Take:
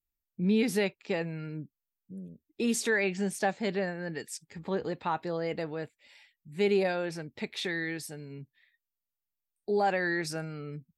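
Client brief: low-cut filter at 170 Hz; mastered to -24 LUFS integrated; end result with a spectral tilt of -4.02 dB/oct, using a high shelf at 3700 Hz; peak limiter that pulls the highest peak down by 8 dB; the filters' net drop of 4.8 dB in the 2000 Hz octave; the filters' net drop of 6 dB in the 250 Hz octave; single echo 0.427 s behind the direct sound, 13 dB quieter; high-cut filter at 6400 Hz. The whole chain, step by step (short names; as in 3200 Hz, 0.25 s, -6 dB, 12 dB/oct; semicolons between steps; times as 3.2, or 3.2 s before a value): HPF 170 Hz; LPF 6400 Hz; bell 250 Hz -6.5 dB; bell 2000 Hz -6.5 dB; high shelf 3700 Hz +4 dB; limiter -25.5 dBFS; echo 0.427 s -13 dB; gain +13 dB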